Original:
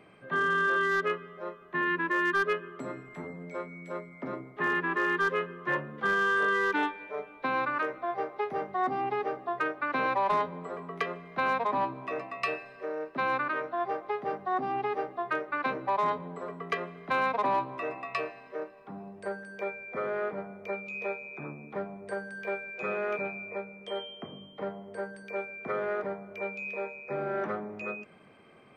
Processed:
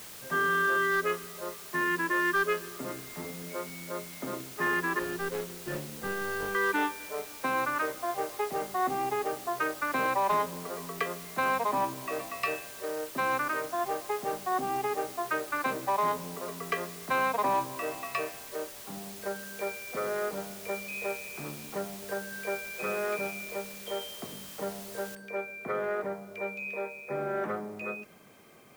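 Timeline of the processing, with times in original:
0:04.99–0:06.55: running median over 41 samples
0:25.15: noise floor change −46 dB −64 dB

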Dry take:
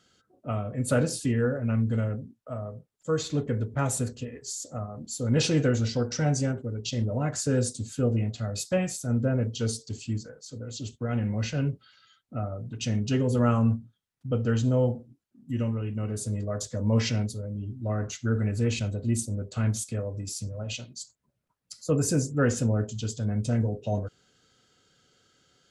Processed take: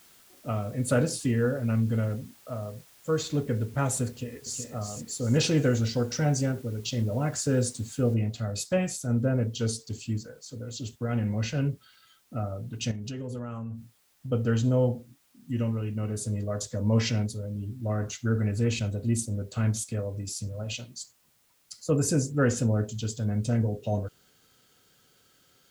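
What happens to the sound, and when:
0:04.09–0:04.65: delay throw 370 ms, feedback 40%, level −6 dB
0:08.14: noise floor change −57 dB −67 dB
0:12.91–0:14.32: downward compressor 12 to 1, threshold −32 dBFS

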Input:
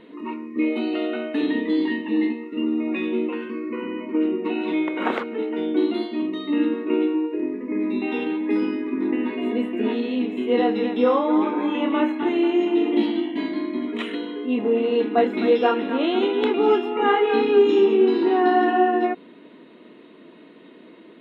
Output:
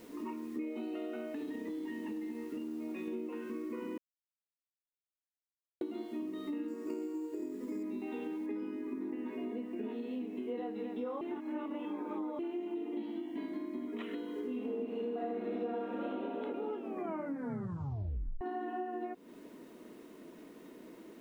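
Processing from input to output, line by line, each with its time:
0:01.30–0:03.08: downward compressor, threshold −27 dBFS
0:03.98–0:05.81: silence
0:06.68–0:07.83: bad sample-rate conversion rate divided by 6×, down filtered, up hold
0:08.46: noise floor change −48 dB −54 dB
0:11.21–0:12.39: reverse
0:14.31–0:16.04: thrown reverb, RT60 2.9 s, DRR −7.5 dB
0:16.77: tape stop 1.64 s
whole clip: high-shelf EQ 2,300 Hz −11.5 dB; downward compressor 6 to 1, threshold −32 dBFS; level −5 dB

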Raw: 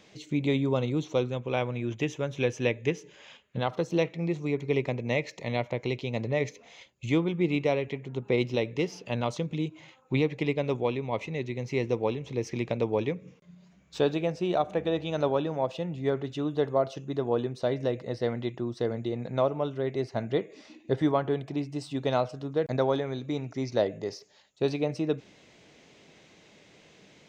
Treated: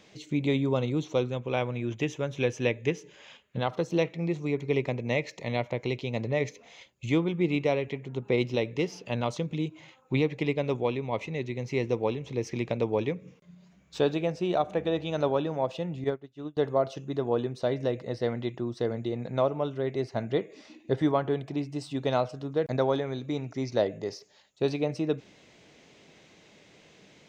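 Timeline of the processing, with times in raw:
0:16.04–0:16.57: expander for the loud parts 2.5 to 1, over −41 dBFS

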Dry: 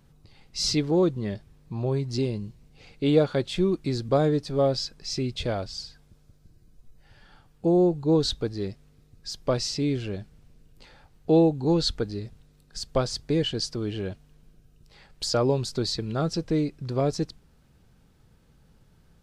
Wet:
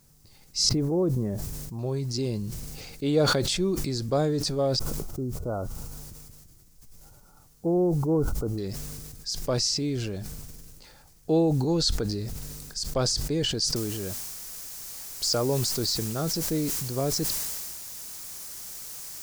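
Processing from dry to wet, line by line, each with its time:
0:00.69–0:01.79: low-pass filter 1,000 Hz
0:04.79–0:08.58: linear-phase brick-wall low-pass 1,500 Hz
0:13.76: noise floor change −67 dB −43 dB
whole clip: high shelf with overshoot 4,300 Hz +7 dB, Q 1.5; level that may fall only so fast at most 24 dB per second; level −3.5 dB

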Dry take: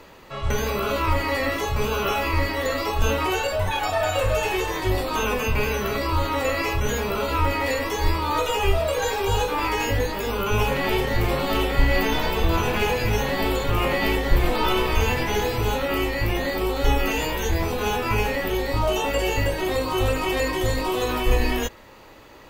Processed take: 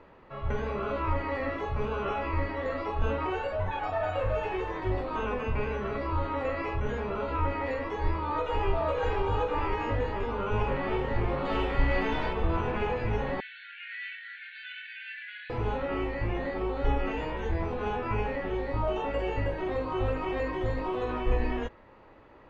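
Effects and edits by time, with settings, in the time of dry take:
0:07.99–0:08.71: delay throw 510 ms, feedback 80%, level −3.5 dB
0:11.45–0:12.33: high-shelf EQ 2,300 Hz +8 dB
0:13.40–0:15.50: linear-phase brick-wall band-pass 1,400–4,600 Hz
whole clip: low-pass filter 1,800 Hz 12 dB per octave; level −6.5 dB

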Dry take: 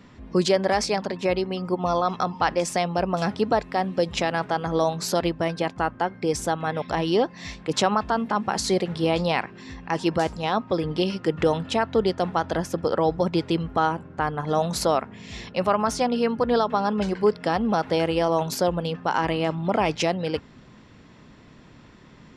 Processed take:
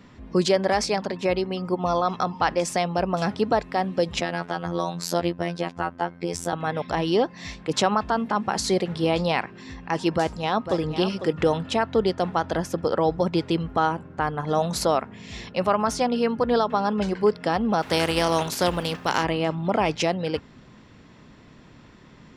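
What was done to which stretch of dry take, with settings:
0:04.21–0:06.53: phases set to zero 86.1 Hz
0:10.14–0:10.82: delay throw 500 ms, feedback 15%, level −10 dB
0:17.81–0:19.22: compressing power law on the bin magnitudes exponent 0.63

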